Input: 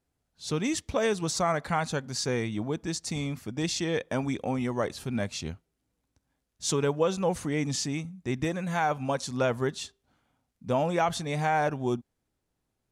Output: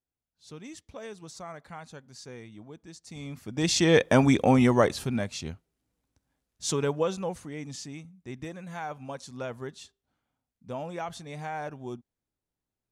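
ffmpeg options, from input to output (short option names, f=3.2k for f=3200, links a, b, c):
-af "volume=9.5dB,afade=t=in:st=3.05:d=0.44:silence=0.237137,afade=t=in:st=3.49:d=0.47:silence=0.251189,afade=t=out:st=4.65:d=0.59:silence=0.298538,afade=t=out:st=6.99:d=0.43:silence=0.375837"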